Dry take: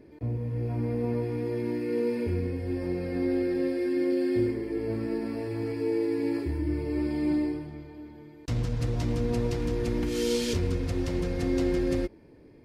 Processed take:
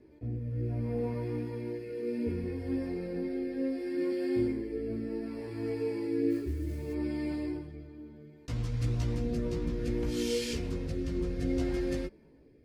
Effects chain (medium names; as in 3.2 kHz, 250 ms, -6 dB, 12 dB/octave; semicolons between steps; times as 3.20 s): 6.30–6.93 s: modulation noise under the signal 24 dB; chorus voices 4, 0.38 Hz, delay 16 ms, depth 2.7 ms; rotary cabinet horn 0.65 Hz